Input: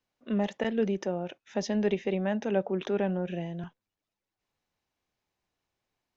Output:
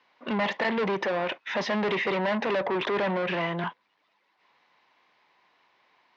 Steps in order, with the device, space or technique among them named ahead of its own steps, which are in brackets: overdrive pedal into a guitar cabinet (overdrive pedal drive 32 dB, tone 5300 Hz, clips at -14.5 dBFS; speaker cabinet 95–4500 Hz, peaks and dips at 100 Hz -7 dB, 1000 Hz +9 dB, 2000 Hz +6 dB); gain -6 dB

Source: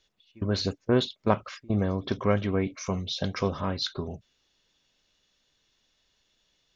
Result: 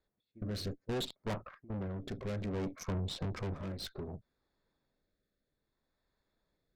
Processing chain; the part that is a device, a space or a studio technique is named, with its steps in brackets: Wiener smoothing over 15 samples; 1.23–2.06 LPF 1300 Hz -> 2200 Hz 12 dB/oct; 2.83–3.54 tilt -2.5 dB/oct; overdriven rotary cabinet (tube stage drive 34 dB, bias 0.7; rotary speaker horn 0.6 Hz); gain +1.5 dB

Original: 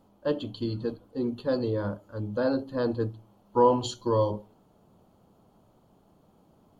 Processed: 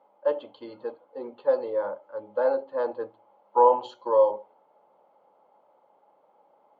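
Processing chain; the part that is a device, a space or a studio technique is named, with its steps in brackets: tin-can telephone (BPF 630–2000 Hz; small resonant body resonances 550/840/2100 Hz, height 12 dB, ringing for 30 ms)

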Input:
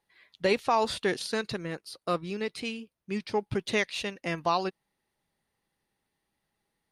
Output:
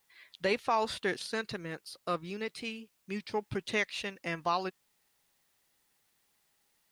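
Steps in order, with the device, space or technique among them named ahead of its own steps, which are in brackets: noise-reduction cassette on a plain deck (mismatched tape noise reduction encoder only; wow and flutter 23 cents; white noise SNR 37 dB); dynamic EQ 1700 Hz, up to +4 dB, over -40 dBFS, Q 0.88; gain -5.5 dB

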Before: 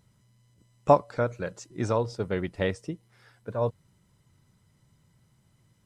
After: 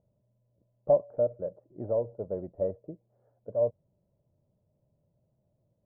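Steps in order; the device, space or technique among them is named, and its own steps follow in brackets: overdriven synthesiser ladder filter (soft clip -17 dBFS, distortion -10 dB; ladder low-pass 650 Hz, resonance 75%); gain +2 dB

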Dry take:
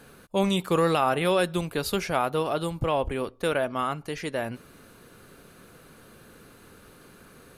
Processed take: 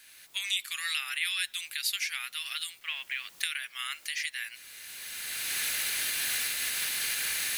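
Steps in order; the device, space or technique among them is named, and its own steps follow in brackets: Chebyshev high-pass 1900 Hz, order 4; 2.81–3.37 air absorption 200 m; cheap recorder with automatic gain (white noise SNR 27 dB; recorder AGC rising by 19 dB/s); gain +3 dB

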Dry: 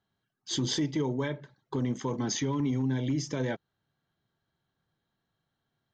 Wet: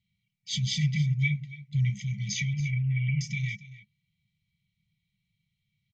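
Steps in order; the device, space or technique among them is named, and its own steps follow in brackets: 2.53–3.21 steep low-pass 3000 Hz 72 dB/oct; inside a helmet (high shelf 4300 Hz -9 dB; small resonant body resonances 510/1200/2300 Hz, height 16 dB, ringing for 35 ms); FFT band-reject 210–1900 Hz; 0.77–1.9 dynamic EQ 140 Hz, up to +6 dB, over -47 dBFS, Q 2.9; echo 0.279 s -17 dB; gain +5 dB

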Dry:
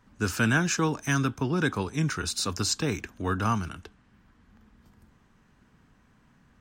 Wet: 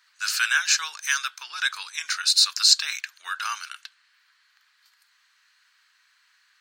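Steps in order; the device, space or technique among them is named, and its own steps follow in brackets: headphones lying on a table (HPF 1500 Hz 24 dB/oct; bell 4300 Hz +11.5 dB 0.32 oct); gain +7 dB

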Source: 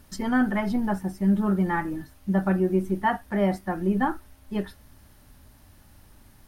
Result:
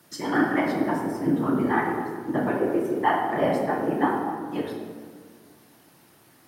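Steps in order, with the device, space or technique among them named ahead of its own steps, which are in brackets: 2.48–2.95 HPF 270 Hz; whispering ghost (whisperiser; HPF 290 Hz 12 dB/oct; reverb RT60 1.8 s, pre-delay 3 ms, DRR -0.5 dB)

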